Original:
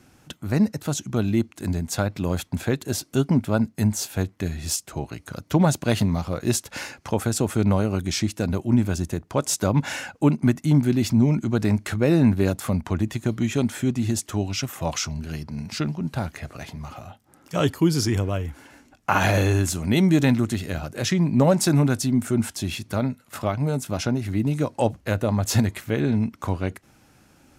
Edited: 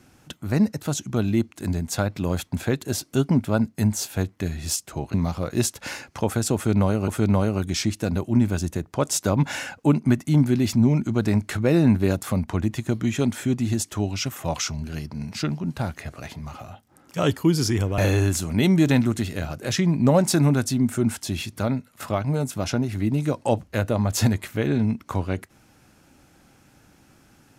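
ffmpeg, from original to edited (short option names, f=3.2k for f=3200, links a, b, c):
-filter_complex "[0:a]asplit=4[a][b][c][d];[a]atrim=end=5.142[e];[b]atrim=start=6.038:end=7.982[f];[c]atrim=start=7.448:end=18.352[g];[d]atrim=start=19.308[h];[e][f]acrossfade=d=0.004:c1=hsin:c2=hsin[i];[i][g]acrossfade=d=0.004:c1=hsin:c2=hsin[j];[j][h]acrossfade=d=0.004:c1=hsin:c2=hsin"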